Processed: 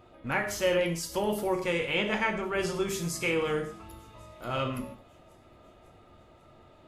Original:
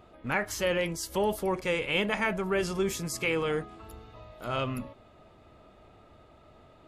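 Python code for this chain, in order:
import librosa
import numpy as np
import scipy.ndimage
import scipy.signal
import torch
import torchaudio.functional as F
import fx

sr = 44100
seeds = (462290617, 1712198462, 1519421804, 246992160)

p1 = fx.lowpass(x, sr, hz=7800.0, slope=24, at=(1.86, 2.54))
p2 = p1 + fx.echo_wet_highpass(p1, sr, ms=547, feedback_pct=61, hz=5000.0, wet_db=-23.0, dry=0)
p3 = fx.rev_gated(p2, sr, seeds[0], gate_ms=190, shape='falling', drr_db=3.5)
y = F.gain(torch.from_numpy(p3), -1.5).numpy()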